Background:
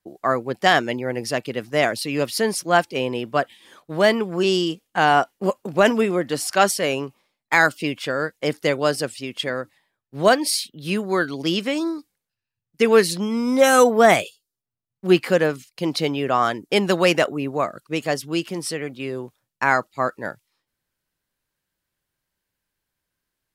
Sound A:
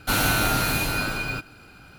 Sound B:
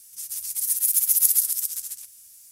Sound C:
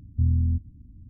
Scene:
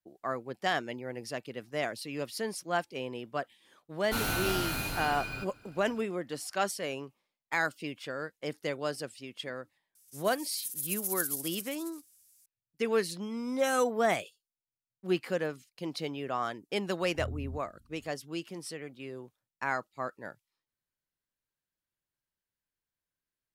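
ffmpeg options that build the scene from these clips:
ffmpeg -i bed.wav -i cue0.wav -i cue1.wav -i cue2.wav -filter_complex "[0:a]volume=-13.5dB[link_01];[1:a]atrim=end=1.98,asetpts=PTS-STARTPTS,volume=-10dB,afade=type=in:duration=0.004:curve=hsin,afade=type=out:start_time=1.976:duration=0.004:curve=hsin,adelay=4040[link_02];[2:a]atrim=end=2.51,asetpts=PTS-STARTPTS,volume=-14.5dB,afade=type=in:duration=0.004:curve=hsin,afade=type=out:start_time=2.506:duration=0.004:curve=hsin,adelay=9950[link_03];[3:a]atrim=end=1.09,asetpts=PTS-STARTPTS,volume=-16.5dB,afade=type=in:duration=0.004:curve=hsin,afade=type=out:start_time=1.086:duration=0.004:curve=hsin,adelay=749700S[link_04];[link_01][link_02][link_03][link_04]amix=inputs=4:normalize=0" out.wav

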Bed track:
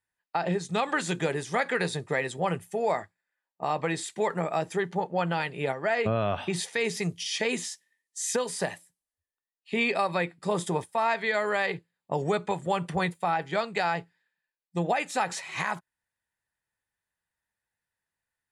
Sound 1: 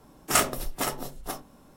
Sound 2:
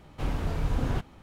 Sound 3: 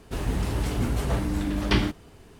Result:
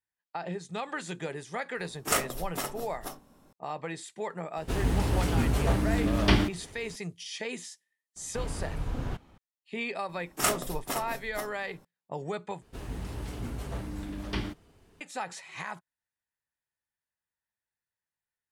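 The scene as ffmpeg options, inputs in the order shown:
ffmpeg -i bed.wav -i cue0.wav -i cue1.wav -i cue2.wav -filter_complex "[1:a]asplit=2[link_01][link_02];[3:a]asplit=2[link_03][link_04];[0:a]volume=-8dB,asplit=2[link_05][link_06];[link_05]atrim=end=12.624[link_07];[link_04]atrim=end=2.39,asetpts=PTS-STARTPTS,volume=-10.5dB[link_08];[link_06]atrim=start=15.006[link_09];[link_01]atrim=end=1.76,asetpts=PTS-STARTPTS,volume=-5dB,afade=type=in:duration=0.004:curve=hsin,afade=type=out:start_time=1.756:duration=0.004:curve=hsin,adelay=1770[link_10];[link_03]atrim=end=2.39,asetpts=PTS-STARTPTS,afade=type=in:duration=0.004:curve=hsin,afade=type=out:start_time=2.386:duration=0.004:curve=hsin,adelay=201537S[link_11];[2:a]atrim=end=1.22,asetpts=PTS-STARTPTS,volume=-5.5dB,afade=type=in:duration=0.004:curve=hsin,afade=type=out:start_time=1.216:duration=0.004:curve=hsin,adelay=8160[link_12];[link_02]atrim=end=1.76,asetpts=PTS-STARTPTS,volume=-4.5dB,afade=type=in:duration=0.004:curve=hsin,afade=type=out:start_time=1.756:duration=0.004:curve=hsin,adelay=10090[link_13];[link_07][link_08]acrossfade=duration=0.004:curve1=hsin:curve2=hsin[link_14];[link_14][link_09]acrossfade=duration=0.004:curve1=hsin:curve2=hsin[link_15];[link_15][link_10][link_11][link_12][link_13]amix=inputs=5:normalize=0" out.wav

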